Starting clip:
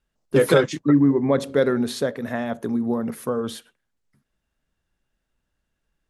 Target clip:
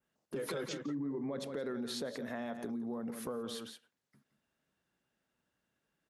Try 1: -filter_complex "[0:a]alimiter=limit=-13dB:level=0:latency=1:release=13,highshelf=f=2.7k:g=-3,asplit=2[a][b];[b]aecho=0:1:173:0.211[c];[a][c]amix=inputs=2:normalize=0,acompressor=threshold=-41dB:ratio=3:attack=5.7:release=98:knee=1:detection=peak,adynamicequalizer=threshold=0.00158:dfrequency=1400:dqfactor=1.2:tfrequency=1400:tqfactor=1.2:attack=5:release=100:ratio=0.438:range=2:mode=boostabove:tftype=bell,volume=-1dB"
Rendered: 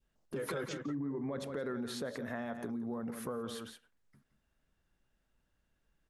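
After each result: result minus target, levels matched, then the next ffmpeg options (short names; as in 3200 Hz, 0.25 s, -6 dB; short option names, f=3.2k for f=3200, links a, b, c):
125 Hz band +3.5 dB; 4000 Hz band -3.0 dB
-filter_complex "[0:a]alimiter=limit=-13dB:level=0:latency=1:release=13,highpass=150,highshelf=f=2.7k:g=-3,asplit=2[a][b];[b]aecho=0:1:173:0.211[c];[a][c]amix=inputs=2:normalize=0,acompressor=threshold=-41dB:ratio=3:attack=5.7:release=98:knee=1:detection=peak,adynamicequalizer=threshold=0.00158:dfrequency=1400:dqfactor=1.2:tfrequency=1400:tqfactor=1.2:attack=5:release=100:ratio=0.438:range=2:mode=boostabove:tftype=bell,volume=-1dB"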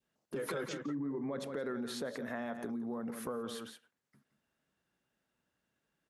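4000 Hz band -3.0 dB
-filter_complex "[0:a]alimiter=limit=-13dB:level=0:latency=1:release=13,highpass=150,highshelf=f=2.7k:g=-3,asplit=2[a][b];[b]aecho=0:1:173:0.211[c];[a][c]amix=inputs=2:normalize=0,acompressor=threshold=-41dB:ratio=3:attack=5.7:release=98:knee=1:detection=peak,adynamicequalizer=threshold=0.00158:dfrequency=4400:dqfactor=1.2:tfrequency=4400:tqfactor=1.2:attack=5:release=100:ratio=0.438:range=2:mode=boostabove:tftype=bell,volume=-1dB"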